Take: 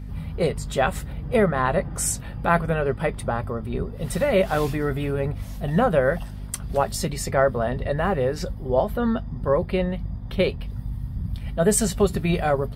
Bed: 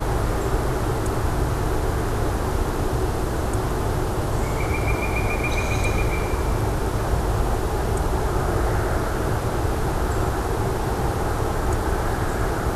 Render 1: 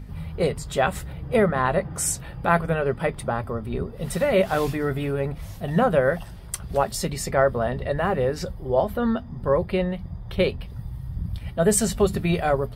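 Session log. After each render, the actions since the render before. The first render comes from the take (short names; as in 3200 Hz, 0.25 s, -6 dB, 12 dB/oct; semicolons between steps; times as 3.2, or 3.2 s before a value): de-hum 50 Hz, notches 5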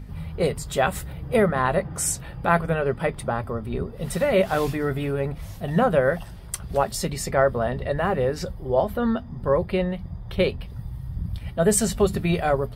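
0.44–1.82 high shelf 9800 Hz +7.5 dB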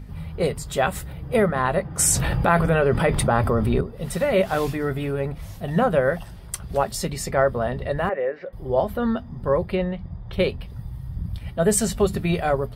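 1.99–3.81 fast leveller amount 70%; 8.09–8.53 speaker cabinet 490–2300 Hz, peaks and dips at 570 Hz +5 dB, 890 Hz -9 dB, 1300 Hz -5 dB, 2000 Hz +5 dB; 9.75–10.33 air absorption 100 m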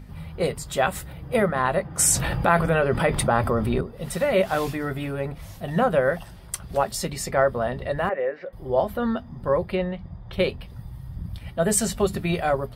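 low shelf 190 Hz -5 dB; notch 430 Hz, Q 13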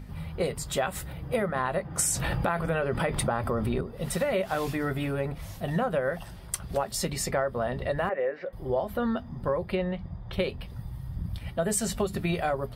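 compressor, threshold -24 dBFS, peak gain reduction 11 dB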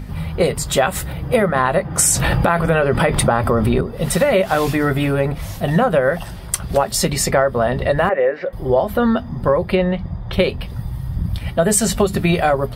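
gain +12 dB; limiter -2 dBFS, peak gain reduction 2 dB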